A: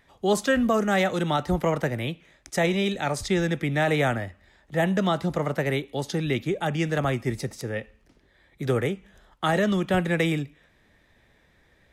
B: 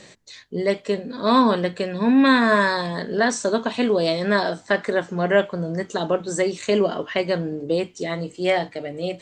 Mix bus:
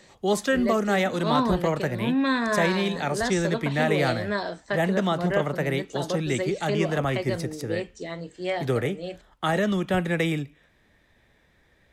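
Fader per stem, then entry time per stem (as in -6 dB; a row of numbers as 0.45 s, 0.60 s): -1.0 dB, -8.0 dB; 0.00 s, 0.00 s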